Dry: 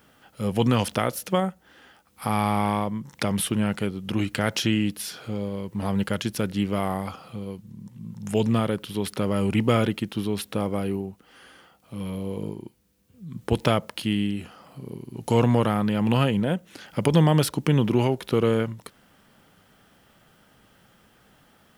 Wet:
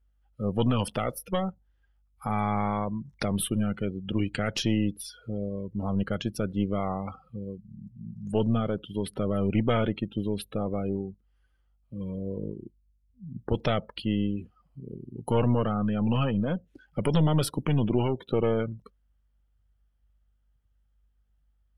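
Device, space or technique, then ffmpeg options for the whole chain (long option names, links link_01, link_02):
valve amplifier with mains hum: -af "aeval=exprs='(tanh(5.01*val(0)+0.55)-tanh(0.55))/5.01':channel_layout=same,aeval=exprs='val(0)+0.00178*(sin(2*PI*50*n/s)+sin(2*PI*2*50*n/s)/2+sin(2*PI*3*50*n/s)/3+sin(2*PI*4*50*n/s)/4+sin(2*PI*5*50*n/s)/5)':channel_layout=same,afftdn=noise_reduction=29:noise_floor=-37"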